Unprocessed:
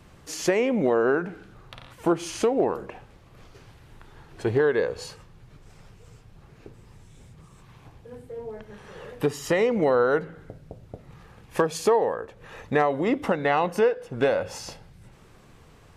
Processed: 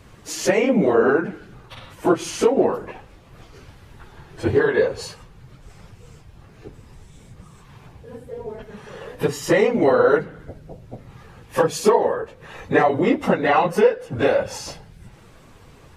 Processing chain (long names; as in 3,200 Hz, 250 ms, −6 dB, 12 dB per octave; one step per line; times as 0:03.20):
random phases in long frames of 50 ms
level +5 dB